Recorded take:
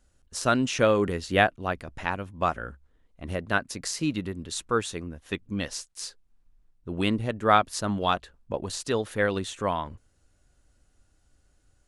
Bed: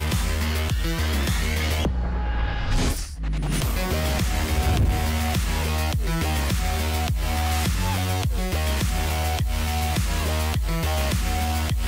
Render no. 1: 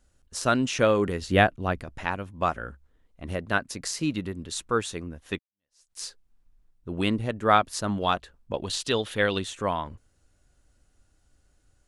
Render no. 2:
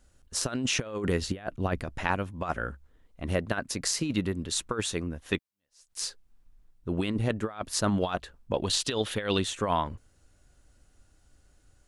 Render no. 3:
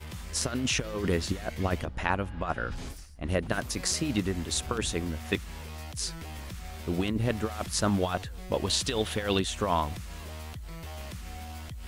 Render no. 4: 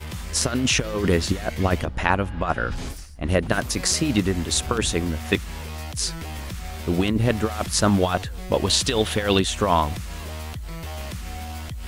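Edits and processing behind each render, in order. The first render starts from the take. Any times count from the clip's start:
1.21–1.84 s: bass shelf 290 Hz +6.5 dB; 5.39–5.92 s: fade in exponential; 8.53–9.44 s: peaking EQ 3.3 kHz +11 dB 0.81 oct
compressor with a negative ratio -27 dBFS, ratio -0.5
add bed -17 dB
trim +7.5 dB; peak limiter -2 dBFS, peak gain reduction 1 dB

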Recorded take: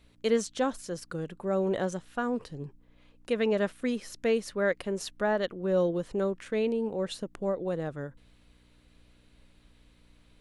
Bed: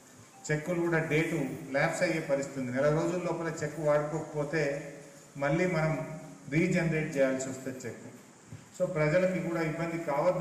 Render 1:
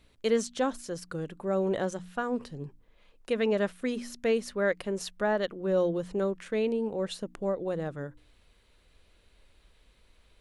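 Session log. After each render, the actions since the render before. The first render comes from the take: de-hum 60 Hz, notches 5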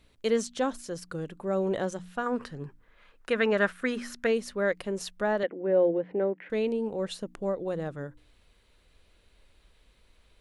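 2.26–4.27 s: peaking EQ 1.5 kHz +12.5 dB 1.1 oct; 5.43–6.50 s: cabinet simulation 230–2400 Hz, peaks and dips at 290 Hz +8 dB, 500 Hz +5 dB, 780 Hz +4 dB, 1.2 kHz -10 dB, 2 kHz +6 dB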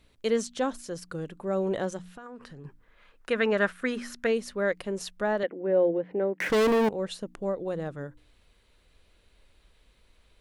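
2.01–2.65 s: compression 5:1, threshold -42 dBFS; 6.40–6.89 s: waveshaping leveller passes 5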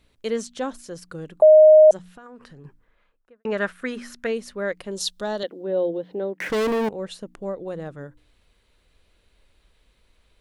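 1.42–1.91 s: bleep 620 Hz -7 dBFS; 2.64–3.45 s: studio fade out; 4.91–6.33 s: resonant high shelf 2.9 kHz +8.5 dB, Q 3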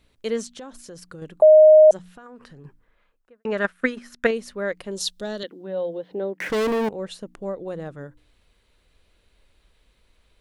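0.48–1.22 s: compression 5:1, threshold -36 dBFS; 3.64–4.31 s: transient shaper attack +9 dB, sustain -9 dB; 5.13–6.10 s: peaking EQ 1.3 kHz -> 200 Hz -12 dB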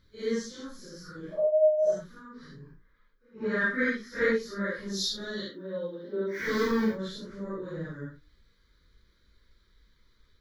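phase randomisation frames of 200 ms; static phaser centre 2.7 kHz, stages 6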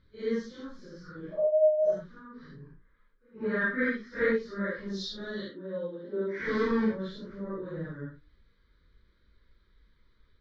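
distance through air 220 m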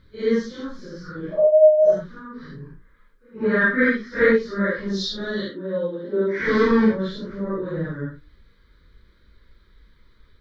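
trim +10 dB

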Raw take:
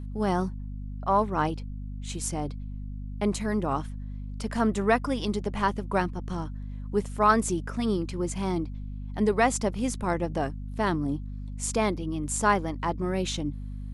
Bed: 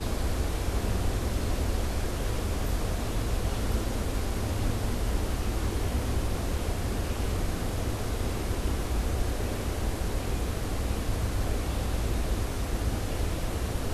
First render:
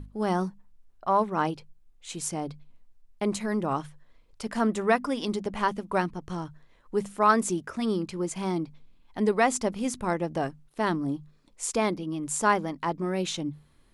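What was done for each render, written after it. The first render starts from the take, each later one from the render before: hum notches 50/100/150/200/250 Hz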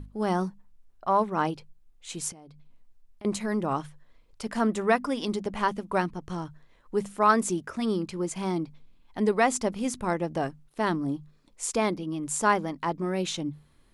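2.32–3.25 s: compression, threshold -47 dBFS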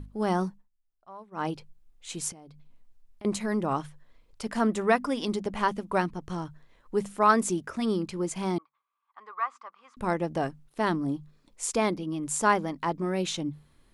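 0.48–1.52 s: dip -22 dB, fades 0.21 s; 8.58–9.97 s: ladder band-pass 1.2 kHz, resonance 85%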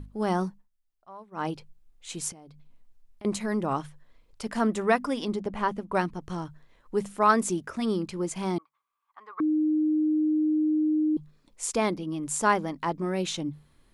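5.24–5.95 s: treble shelf 2.6 kHz -8.5 dB; 9.40–11.17 s: bleep 308 Hz -21 dBFS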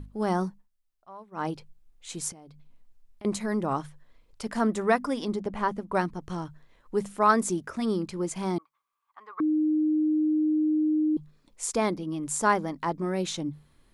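dynamic bell 2.8 kHz, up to -5 dB, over -51 dBFS, Q 2.7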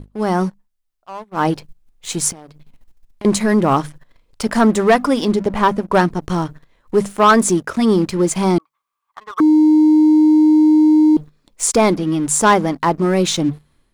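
level rider gain up to 7 dB; waveshaping leveller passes 2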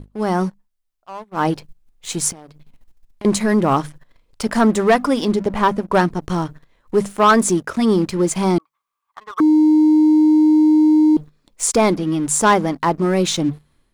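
trim -1.5 dB

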